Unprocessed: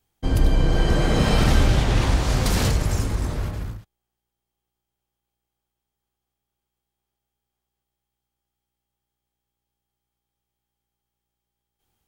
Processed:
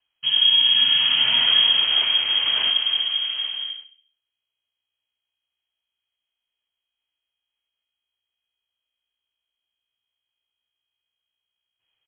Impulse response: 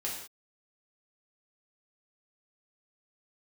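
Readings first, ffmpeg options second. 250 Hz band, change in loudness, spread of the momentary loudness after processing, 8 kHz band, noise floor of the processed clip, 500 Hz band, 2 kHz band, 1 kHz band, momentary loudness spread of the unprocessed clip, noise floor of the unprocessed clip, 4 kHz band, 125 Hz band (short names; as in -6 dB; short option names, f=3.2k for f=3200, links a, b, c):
under -20 dB, +5.5 dB, 12 LU, under -40 dB, -85 dBFS, -18.5 dB, +3.5 dB, -7.5 dB, 11 LU, -84 dBFS, +18.5 dB, under -30 dB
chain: -filter_complex "[0:a]asplit=2[a][b];[b]adelay=67,lowpass=f=1.7k:p=1,volume=-12dB,asplit=2[c][d];[d]adelay=67,lowpass=f=1.7k:p=1,volume=0.49,asplit=2[e][f];[f]adelay=67,lowpass=f=1.7k:p=1,volume=0.49,asplit=2[g][h];[h]adelay=67,lowpass=f=1.7k:p=1,volume=0.49,asplit=2[i][j];[j]adelay=67,lowpass=f=1.7k:p=1,volume=0.49[k];[a][c][e][g][i][k]amix=inputs=6:normalize=0,lowpass=f=2.8k:t=q:w=0.5098,lowpass=f=2.8k:t=q:w=0.6013,lowpass=f=2.8k:t=q:w=0.9,lowpass=f=2.8k:t=q:w=2.563,afreqshift=-3300,volume=-1.5dB"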